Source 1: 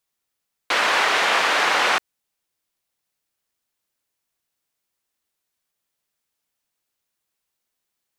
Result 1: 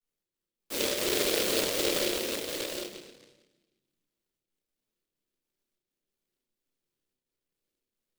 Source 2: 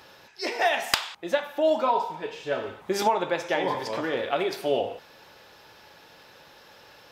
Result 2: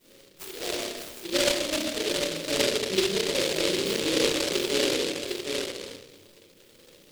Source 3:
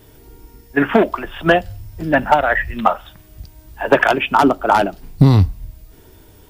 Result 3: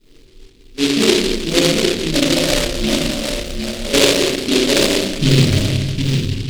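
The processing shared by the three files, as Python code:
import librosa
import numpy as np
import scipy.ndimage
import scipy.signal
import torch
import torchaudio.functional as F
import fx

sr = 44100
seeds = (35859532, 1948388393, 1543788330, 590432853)

p1 = scipy.signal.sosfilt(scipy.signal.ellip(3, 1.0, 40, [500.0, 4500.0], 'bandstop', fs=sr, output='sos'), x)
p2 = fx.peak_eq(p1, sr, hz=73.0, db=-12.0, octaves=2.7)
p3 = fx.hum_notches(p2, sr, base_hz=60, count=8)
p4 = fx.rider(p3, sr, range_db=3, speed_s=0.5)
p5 = fx.step_gate(p4, sr, bpm=141, pattern='xx.x.xxx.xxxx', floor_db=-60.0, edge_ms=4.5)
p6 = fx.air_absorb(p5, sr, metres=130.0)
p7 = fx.doubler(p6, sr, ms=31.0, db=-4.5)
p8 = p7 + fx.echo_single(p7, sr, ms=753, db=-5.0, dry=0)
p9 = fx.room_shoebox(p8, sr, seeds[0], volume_m3=540.0, walls='mixed', distance_m=8.6)
p10 = fx.noise_mod_delay(p9, sr, seeds[1], noise_hz=3300.0, depth_ms=0.25)
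y = p10 * librosa.db_to_amplitude(-9.5)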